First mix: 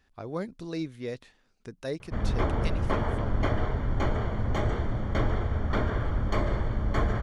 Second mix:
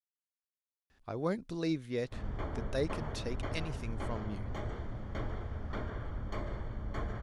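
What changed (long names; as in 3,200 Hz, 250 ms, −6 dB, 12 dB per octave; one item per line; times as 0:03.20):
speech: entry +0.90 s
background −11.5 dB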